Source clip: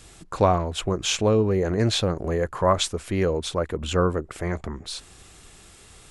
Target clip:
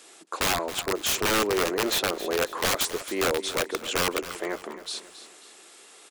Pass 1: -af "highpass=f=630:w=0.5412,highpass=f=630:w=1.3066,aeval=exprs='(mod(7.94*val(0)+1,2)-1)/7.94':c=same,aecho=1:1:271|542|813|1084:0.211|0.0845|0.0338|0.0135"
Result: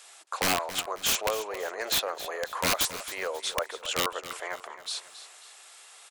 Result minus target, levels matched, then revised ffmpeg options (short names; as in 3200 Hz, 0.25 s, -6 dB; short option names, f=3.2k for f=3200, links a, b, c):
250 Hz band -6.0 dB
-af "highpass=f=310:w=0.5412,highpass=f=310:w=1.3066,aeval=exprs='(mod(7.94*val(0)+1,2)-1)/7.94':c=same,aecho=1:1:271|542|813|1084:0.211|0.0845|0.0338|0.0135"